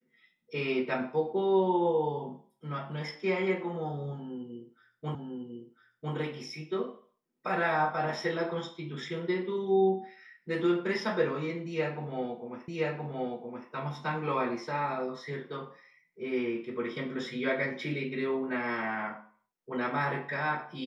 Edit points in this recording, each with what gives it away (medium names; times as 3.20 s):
5.15 s: repeat of the last 1 s
12.68 s: repeat of the last 1.02 s